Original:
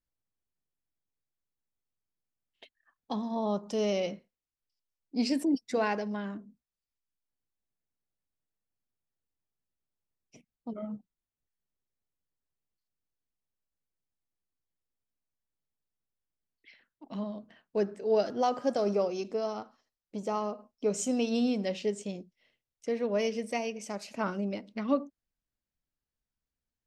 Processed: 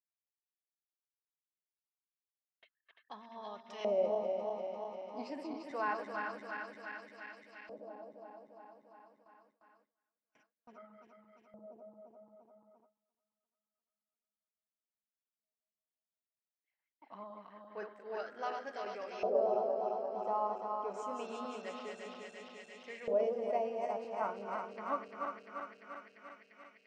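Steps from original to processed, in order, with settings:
feedback delay that plays each chunk backwards 173 ms, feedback 85%, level −4.5 dB
auto-filter band-pass saw up 0.26 Hz 590–2,100 Hz
noise gate with hold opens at −57 dBFS

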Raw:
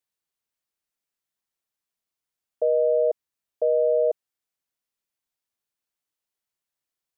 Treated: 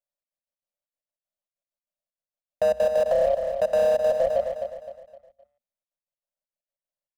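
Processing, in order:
gain on one half-wave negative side −3 dB
echo with shifted repeats 144 ms, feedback 39%, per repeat +33 Hz, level −18 dB
leveller curve on the samples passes 5
hard clipping −26 dBFS, distortion −10 dB
gate pattern "xxx.x.x." 193 BPM −24 dB
drawn EQ curve 250 Hz 0 dB, 380 Hz −26 dB, 590 Hz +5 dB, 910 Hz −3 dB, 1,400 Hz −6 dB
downward compressor, threshold −25 dBFS, peak gain reduction 2.5 dB
parametric band 530 Hz +14 dB 0.52 octaves
mains-hum notches 60/120/180/240 Hz
repeating echo 258 ms, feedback 38%, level −11 dB
brickwall limiter −17.5 dBFS, peak gain reduction 6.5 dB
level +4 dB

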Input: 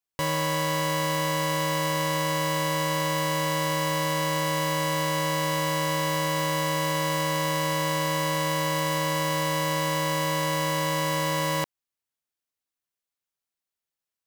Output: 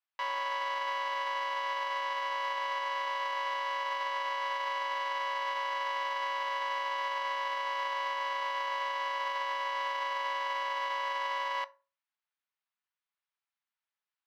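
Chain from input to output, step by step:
sub-octave generator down 1 octave, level −4 dB
high-pass filter 850 Hz 24 dB per octave
brickwall limiter −24.5 dBFS, peak gain reduction 11 dB
high-frequency loss of the air 270 metres
on a send: convolution reverb RT60 0.35 s, pre-delay 3 ms, DRR 11 dB
on the sum: level +3.5 dB

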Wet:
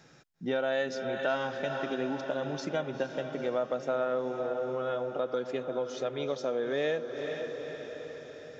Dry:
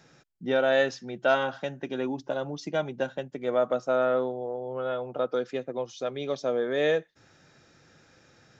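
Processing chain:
on a send: feedback delay with all-pass diffusion 462 ms, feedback 59%, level −10 dB
on the sum: downward compressor 2.5 to 1, threshold −29 dBFS, peak gain reduction 8 dB

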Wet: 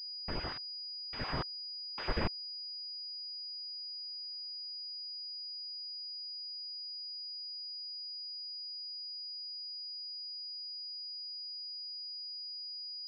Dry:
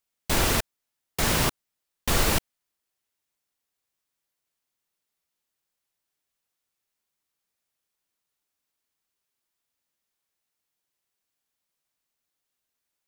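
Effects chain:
time-frequency cells dropped at random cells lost 37%
source passing by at 0:04.29, 16 m/s, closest 6.2 metres
switching amplifier with a slow clock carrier 4,900 Hz
level +7.5 dB

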